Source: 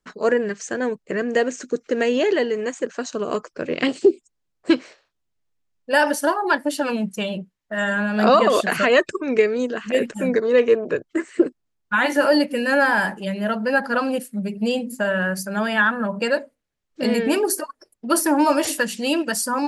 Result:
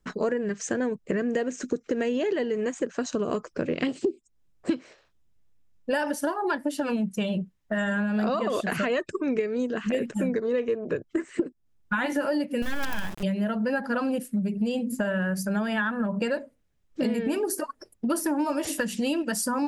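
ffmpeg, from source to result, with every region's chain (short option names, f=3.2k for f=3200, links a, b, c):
-filter_complex "[0:a]asettb=1/sr,asplit=3[a][b][c];[a]atrim=end=12.624[d];[b]atrim=start=12.62:end=13.23,asetpts=PTS-STARTPTS,afade=t=in:d=0.004:c=qsin,afade=t=out:st=0.606:d=0.004:c=qsin,equalizer=f=570:t=o:w=0.61:g=-5,acrusher=bits=3:dc=4:mix=0:aa=0.000001[e];[c]atrim=start=13.226[f];[d][e]acrossfade=d=0.004:c1=hsin:c2=qsin[g];[g][f]acrossfade=d=0.004:c1=qsin:c2=hsin,lowshelf=f=260:g=11.5,acompressor=threshold=-26dB:ratio=6,bandreject=f=4.4k:w=19,volume=1.5dB"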